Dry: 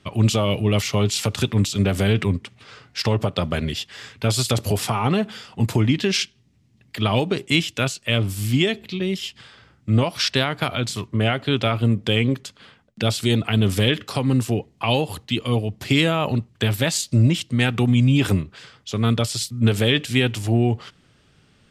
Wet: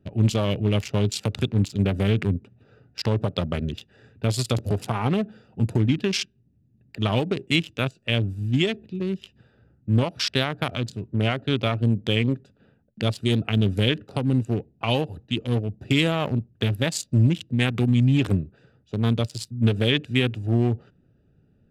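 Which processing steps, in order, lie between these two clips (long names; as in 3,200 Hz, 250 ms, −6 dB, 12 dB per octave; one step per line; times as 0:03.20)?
adaptive Wiener filter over 41 samples
level −2 dB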